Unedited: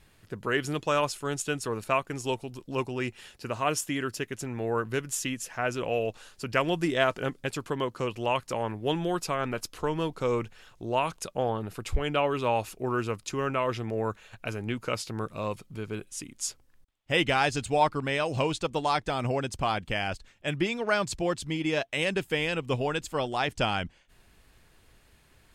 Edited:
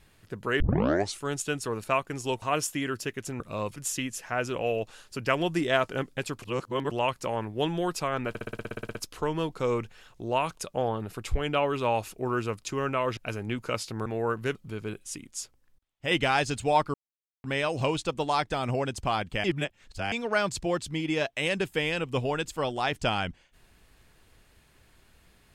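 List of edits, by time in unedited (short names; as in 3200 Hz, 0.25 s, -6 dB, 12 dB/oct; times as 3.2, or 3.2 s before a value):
0.6 tape start 0.60 s
2.42–3.56 cut
4.54–5.03 swap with 15.25–15.61
7.69–8.18 reverse
9.56 stutter 0.06 s, 12 plays
13.78–14.36 cut
16.36–17.17 gain -4 dB
18 insert silence 0.50 s
20–20.68 reverse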